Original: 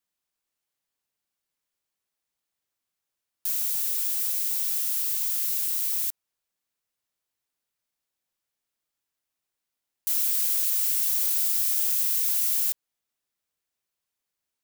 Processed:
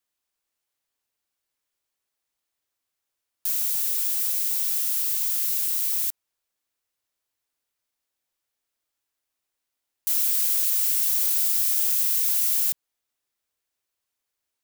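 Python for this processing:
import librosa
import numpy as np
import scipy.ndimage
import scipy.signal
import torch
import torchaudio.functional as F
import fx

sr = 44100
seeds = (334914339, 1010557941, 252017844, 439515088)

y = fx.peak_eq(x, sr, hz=170.0, db=-10.5, octaves=0.45)
y = F.gain(torch.from_numpy(y), 2.0).numpy()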